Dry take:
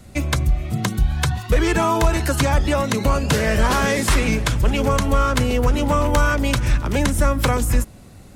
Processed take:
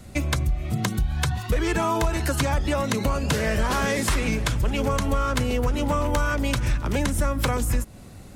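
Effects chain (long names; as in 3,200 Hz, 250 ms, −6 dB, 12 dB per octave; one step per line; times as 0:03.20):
downward compressor 2.5 to 1, threshold −22 dBFS, peak gain reduction 7.5 dB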